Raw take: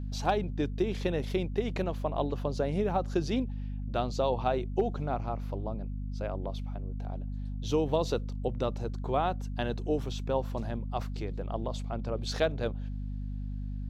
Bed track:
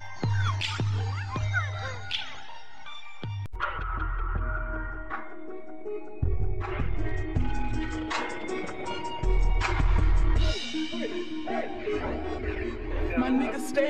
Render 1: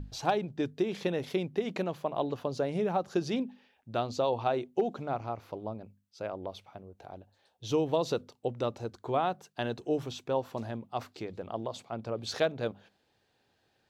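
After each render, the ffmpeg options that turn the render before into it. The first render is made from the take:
-af "bandreject=f=50:t=h:w=6,bandreject=f=100:t=h:w=6,bandreject=f=150:t=h:w=6,bandreject=f=200:t=h:w=6,bandreject=f=250:t=h:w=6"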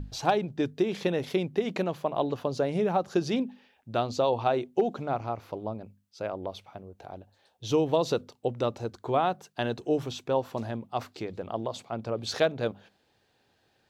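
-af "volume=3.5dB"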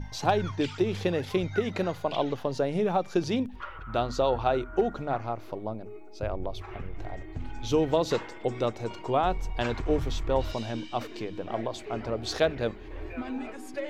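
-filter_complex "[1:a]volume=-9.5dB[a];[0:a][a]amix=inputs=2:normalize=0"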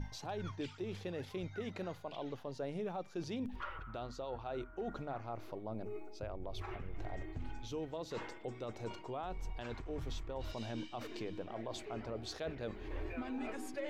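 -af "areverse,acompressor=threshold=-34dB:ratio=16,areverse,alimiter=level_in=8dB:limit=-24dB:level=0:latency=1:release=260,volume=-8dB"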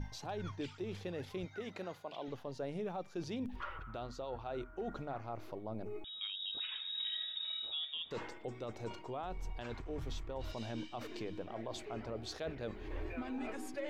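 -filter_complex "[0:a]asettb=1/sr,asplit=3[a][b][c];[a]atrim=end=1.454[d];[b]atrim=start=1.45:end=2.28,asetpts=PTS-STARTPTS,afade=t=in:d=0.004:c=qsin,afade=t=out:st=0.826:d=0.004:c=qsin,highpass=f=260:p=1[e];[c]atrim=start=2.276[f];[d][e]acrossfade=d=0.004:c1=hsin:c2=qsin[g];[g][f]acrossfade=d=0.004:c1=qsin:c2=hsin,asettb=1/sr,asplit=3[h][i][j];[h]atrim=end=6.044[k];[i]atrim=start=6.04:end=8.11,asetpts=PTS-STARTPTS,afade=t=in:d=0.004:c=qsin,afade=t=out:st=2.066:d=0.004:c=qsin,lowpass=f=3.2k:t=q:w=0.5098,lowpass=f=3.2k:t=q:w=0.6013,lowpass=f=3.2k:t=q:w=0.9,lowpass=f=3.2k:t=q:w=2.563,afreqshift=-3800[l];[j]atrim=start=8.106[m];[k][l]acrossfade=d=0.004:c1=hsin:c2=qsin[n];[n][m]acrossfade=d=0.004:c1=qsin:c2=hsin"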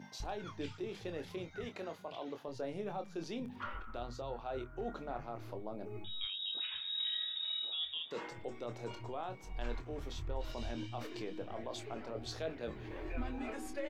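-filter_complex "[0:a]asplit=2[a][b];[b]adelay=25,volume=-8dB[c];[a][c]amix=inputs=2:normalize=0,acrossover=split=160[d][e];[d]adelay=200[f];[f][e]amix=inputs=2:normalize=0"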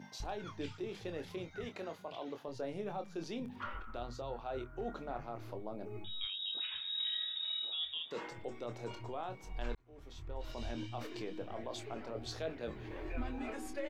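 -filter_complex "[0:a]asplit=2[a][b];[a]atrim=end=9.75,asetpts=PTS-STARTPTS,afade=t=out:st=9.746:d=0.004:c=hsin[c];[b]atrim=start=9.75,asetpts=PTS-STARTPTS,afade=t=in:d=0.95[d];[c][d]concat=n=2:v=0:a=1"

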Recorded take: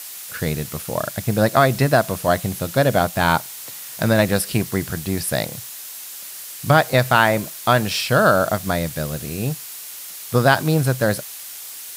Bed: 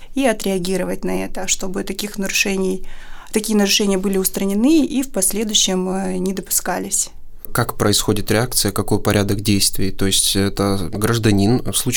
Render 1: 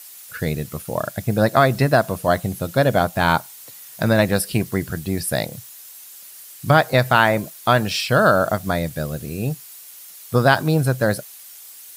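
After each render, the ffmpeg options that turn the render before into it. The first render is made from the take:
-af "afftdn=nr=9:nf=-35"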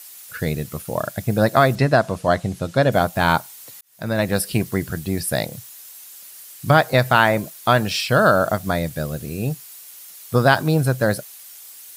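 -filter_complex "[0:a]asettb=1/sr,asplit=3[a][b][c];[a]atrim=end=1.754[d];[b]atrim=start=1.75:end=2.92,asetpts=PTS-STARTPTS,afade=t=in:d=0.004:c=qsin,afade=t=out:st=1.166:d=0.004:c=qsin,lowpass=7.5k[e];[c]atrim=start=2.916[f];[d][e]acrossfade=d=0.004:c1=hsin:c2=qsin[g];[g][f]acrossfade=d=0.004:c1=qsin:c2=hsin,asplit=2[h][i];[h]atrim=end=3.81,asetpts=PTS-STARTPTS,afade=t=out:st=3.806:d=0.004:c=hsin[j];[i]atrim=start=3.81,asetpts=PTS-STARTPTS,afade=t=in:d=0.62[k];[j][k]concat=n=2:v=0:a=1"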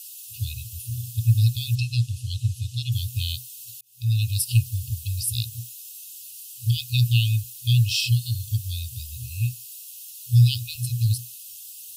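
-af "equalizer=f=120:w=4.7:g=12,afftfilt=real='re*(1-between(b*sr/4096,120,2500))':imag='im*(1-between(b*sr/4096,120,2500))':win_size=4096:overlap=0.75"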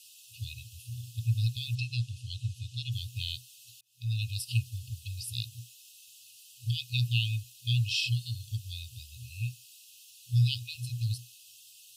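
-af "highpass=f=360:p=1,aemphasis=mode=reproduction:type=75fm"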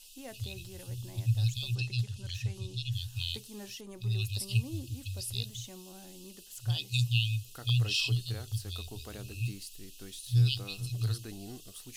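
-filter_complex "[1:a]volume=-30dB[a];[0:a][a]amix=inputs=2:normalize=0"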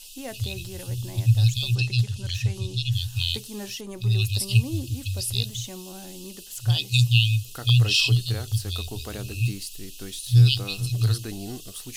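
-af "volume=9.5dB"

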